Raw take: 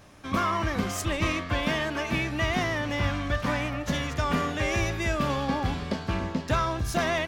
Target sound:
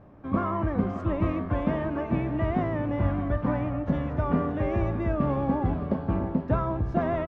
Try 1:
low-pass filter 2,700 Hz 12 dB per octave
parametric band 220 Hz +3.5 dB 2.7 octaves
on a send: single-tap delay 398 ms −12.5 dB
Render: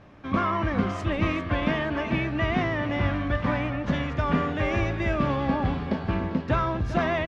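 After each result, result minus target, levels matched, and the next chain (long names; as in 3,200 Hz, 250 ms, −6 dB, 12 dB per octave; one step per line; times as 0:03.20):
2,000 Hz band +9.0 dB; echo 220 ms early
low-pass filter 980 Hz 12 dB per octave
parametric band 220 Hz +3.5 dB 2.7 octaves
on a send: single-tap delay 398 ms −12.5 dB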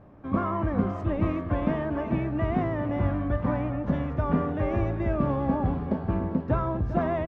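echo 220 ms early
low-pass filter 980 Hz 12 dB per octave
parametric band 220 Hz +3.5 dB 2.7 octaves
on a send: single-tap delay 618 ms −12.5 dB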